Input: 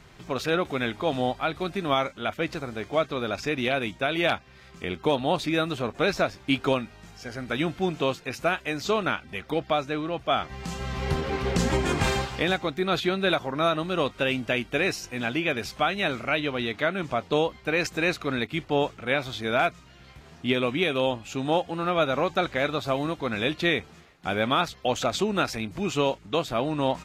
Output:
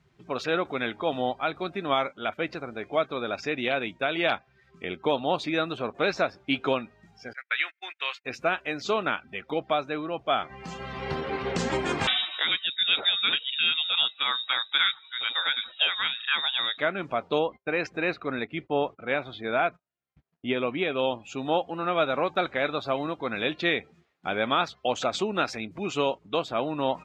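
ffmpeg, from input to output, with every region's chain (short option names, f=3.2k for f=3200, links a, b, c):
-filter_complex "[0:a]asettb=1/sr,asplit=3[a][b][c];[a]atrim=end=7.334[d];[b]atrim=start=7.33:end=8.25,asetpts=PTS-STARTPTS,afade=t=in:d=0.004:c=qsin,afade=t=out:st=0.916:d=0.004:c=qsin,highpass=1.4k,agate=range=-30dB:threshold=-45dB:ratio=16:release=100:detection=peak,equalizer=f=2k:w=1.5:g=10[e];[c]atrim=start=8.246[f];[d][e]acrossfade=d=0.004:c1=hsin:c2=qsin[g];[g][f]acrossfade=d=0.004:c1=qsin:c2=hsin,asettb=1/sr,asplit=3[h][i][j];[h]atrim=end=12.074[k];[i]atrim=start=12.07:end=16.78,asetpts=PTS-STARTPTS,afade=t=in:d=0.004:c=qsin,afade=t=out:st=4.706:d=0.004:c=qsin,highpass=64,aphaser=in_gain=1:out_gain=1:delay=1.1:decay=0.25:speed=1.1:type=sinusoidal,lowpass=f=3.3k:t=q:w=0.5098,lowpass=f=3.3k:t=q:w=0.6013,lowpass=f=3.3k:t=q:w=0.9,lowpass=f=3.3k:t=q:w=2.563,afreqshift=-3900[l];[j]atrim=start=16.776[m];[k][l]acrossfade=d=0.004:c1=hsin:c2=qsin[n];[n][m]acrossfade=d=0.004:c1=qsin:c2=hsin,asettb=1/sr,asplit=3[o][p][q];[o]atrim=end=17.394[r];[p]atrim=start=17.39:end=20.99,asetpts=PTS-STARTPTS,afade=t=in:d=0.004:c=qsin,afade=t=out:st=3.596:d=0.004:c=qsin,lowpass=f=2.5k:p=1,agate=range=-24dB:threshold=-47dB:ratio=16:release=100:detection=peak[s];[q]atrim=start=20.986[t];[r][s]acrossfade=d=0.004:c1=hsin:c2=qsin[u];[u][t]acrossfade=d=0.004:c1=qsin:c2=hsin,afftdn=nr=16:nf=-43,highpass=f=290:p=1,highshelf=f=7.7k:g=-7.5"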